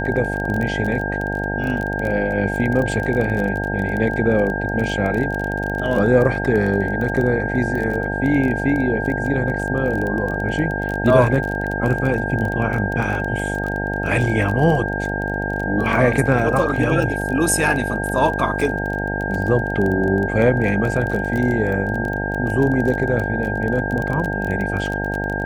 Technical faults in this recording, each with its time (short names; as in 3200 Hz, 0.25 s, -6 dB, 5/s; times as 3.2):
buzz 50 Hz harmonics 18 -25 dBFS
crackle 22/s -23 dBFS
tone 1600 Hz -25 dBFS